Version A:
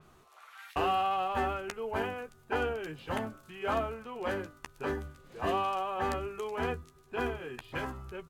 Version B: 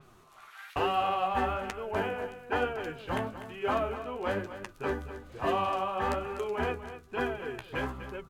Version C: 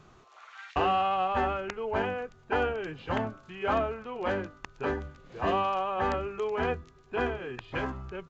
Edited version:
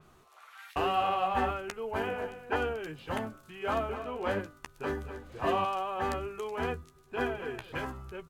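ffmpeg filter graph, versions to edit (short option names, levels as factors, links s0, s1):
-filter_complex "[1:a]asplit=5[s0][s1][s2][s3][s4];[0:a]asplit=6[s5][s6][s7][s8][s9][s10];[s5]atrim=end=0.862[s11];[s0]atrim=start=0.858:end=1.512[s12];[s6]atrim=start=1.508:end=2.072[s13];[s1]atrim=start=2.068:end=2.562[s14];[s7]atrim=start=2.558:end=3.892[s15];[s2]atrim=start=3.888:end=4.412[s16];[s8]atrim=start=4.408:end=5.042[s17];[s3]atrim=start=5.038:end=5.652[s18];[s9]atrim=start=5.648:end=7.202[s19];[s4]atrim=start=7.198:end=7.722[s20];[s10]atrim=start=7.718[s21];[s11][s12]acrossfade=d=0.004:c1=hsin:c2=hsin[s22];[s22][s13]acrossfade=d=0.004:c1=hsin:c2=hsin[s23];[s23][s14]acrossfade=d=0.004:c1=hsin:c2=hsin[s24];[s24][s15]acrossfade=d=0.004:c1=hsin:c2=hsin[s25];[s25][s16]acrossfade=d=0.004:c1=hsin:c2=hsin[s26];[s26][s17]acrossfade=d=0.004:c1=hsin:c2=hsin[s27];[s27][s18]acrossfade=d=0.004:c1=hsin:c2=hsin[s28];[s28][s19]acrossfade=d=0.004:c1=hsin:c2=hsin[s29];[s29][s20]acrossfade=d=0.004:c1=hsin:c2=hsin[s30];[s30][s21]acrossfade=d=0.004:c1=hsin:c2=hsin"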